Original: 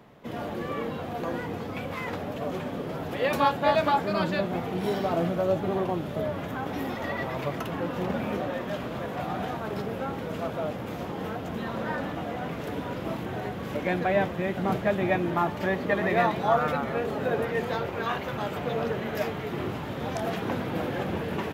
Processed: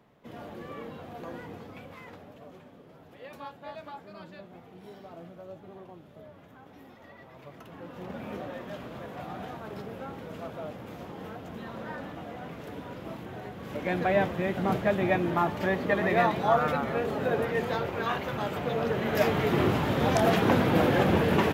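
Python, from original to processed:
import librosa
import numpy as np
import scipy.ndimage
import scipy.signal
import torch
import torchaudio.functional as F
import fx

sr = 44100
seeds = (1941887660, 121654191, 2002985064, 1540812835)

y = fx.gain(x, sr, db=fx.line((1.52, -9.0), (2.76, -19.5), (7.26, -19.5), (8.35, -7.5), (13.54, -7.5), (14.04, -0.5), (18.81, -0.5), (19.4, 7.0)))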